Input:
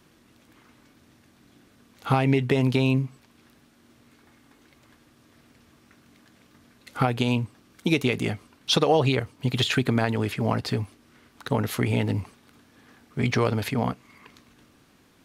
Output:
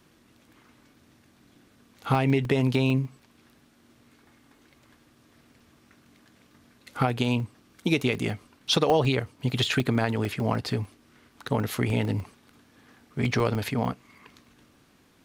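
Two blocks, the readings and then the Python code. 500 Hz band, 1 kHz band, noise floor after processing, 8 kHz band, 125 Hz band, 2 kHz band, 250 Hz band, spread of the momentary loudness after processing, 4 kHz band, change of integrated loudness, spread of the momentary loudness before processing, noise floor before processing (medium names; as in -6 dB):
-1.5 dB, -1.5 dB, -61 dBFS, -1.5 dB, -1.5 dB, -1.5 dB, -1.5 dB, 14 LU, -1.5 dB, -1.5 dB, 14 LU, -59 dBFS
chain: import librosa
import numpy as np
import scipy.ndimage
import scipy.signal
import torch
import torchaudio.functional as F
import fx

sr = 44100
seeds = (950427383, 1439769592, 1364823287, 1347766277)

y = fx.buffer_crackle(x, sr, first_s=0.95, period_s=0.15, block=64, kind='zero')
y = F.gain(torch.from_numpy(y), -1.5).numpy()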